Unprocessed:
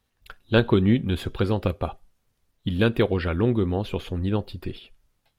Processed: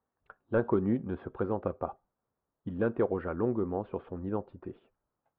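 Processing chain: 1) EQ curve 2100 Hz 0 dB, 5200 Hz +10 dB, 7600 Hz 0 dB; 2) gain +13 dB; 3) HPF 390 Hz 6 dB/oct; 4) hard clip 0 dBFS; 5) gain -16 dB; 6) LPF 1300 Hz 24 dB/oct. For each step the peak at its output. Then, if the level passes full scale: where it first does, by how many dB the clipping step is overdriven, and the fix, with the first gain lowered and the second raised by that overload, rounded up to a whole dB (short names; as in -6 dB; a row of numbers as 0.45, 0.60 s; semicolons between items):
-5.0, +8.0, +9.5, 0.0, -16.0, -15.0 dBFS; step 2, 9.5 dB; step 2 +3 dB, step 5 -6 dB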